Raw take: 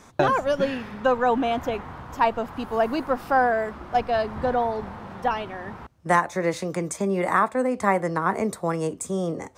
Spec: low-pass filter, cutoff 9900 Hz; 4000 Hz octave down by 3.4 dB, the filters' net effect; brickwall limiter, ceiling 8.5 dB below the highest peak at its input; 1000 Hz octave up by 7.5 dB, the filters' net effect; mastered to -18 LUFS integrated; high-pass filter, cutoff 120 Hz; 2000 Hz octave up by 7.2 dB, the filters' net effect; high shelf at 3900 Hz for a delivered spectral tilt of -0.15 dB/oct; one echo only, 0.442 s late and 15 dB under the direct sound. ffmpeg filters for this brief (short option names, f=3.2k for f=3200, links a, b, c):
-af "highpass=120,lowpass=9.9k,equalizer=f=1k:t=o:g=8.5,equalizer=f=2k:t=o:g=8.5,highshelf=f=3.9k:g=-6.5,equalizer=f=4k:t=o:g=-7,alimiter=limit=-9dB:level=0:latency=1,aecho=1:1:442:0.178,volume=4dB"